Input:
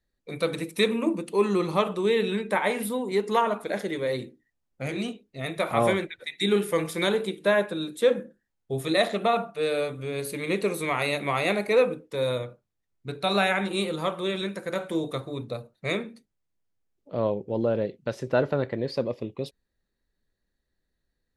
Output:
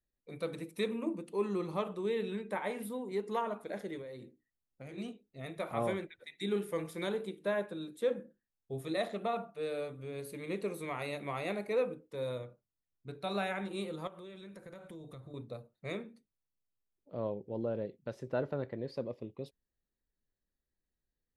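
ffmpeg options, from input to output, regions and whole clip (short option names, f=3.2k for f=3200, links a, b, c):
-filter_complex "[0:a]asettb=1/sr,asplit=3[a][b][c];[a]atrim=end=4.014[d];[b]atrim=start=4.01:end=4.98,asetpts=PTS-STARTPTS,afade=t=in:d=0.004:c=qsin,afade=t=out:st=0.966:d=0.004:c=qsin,acompressor=threshold=-33dB:ratio=4:attack=3.2:release=140:knee=1:detection=peak,bandreject=f=50:t=h:w=6,bandreject=f=100:t=h:w=6[e];[c]atrim=start=4.976[f];[d][e]acrossfade=d=0.004:c1=hsin:c2=qsin[g];[g][f]acrossfade=d=0.004:c1=qsin:c2=hsin,asettb=1/sr,asplit=3[h][i][j];[h]atrim=end=14.074[k];[i]atrim=start=14.07:end=15.34,asetpts=PTS-STARTPTS,afade=t=in:d=0.004:c=qsin,afade=t=out:st=1.266:d=0.004:c=qsin,asubboost=boost=8.5:cutoff=160,acompressor=threshold=-35dB:ratio=6:attack=3.2:release=140:knee=1:detection=peak[l];[j]atrim=start=15.336[m];[k][l]acrossfade=d=0.004:c1=hsin:c2=qsin[n];[n][m]acrossfade=d=0.004:c1=qsin:c2=hsin,lowpass=f=1k:p=1,aemphasis=mode=production:type=75fm,volume=-9dB"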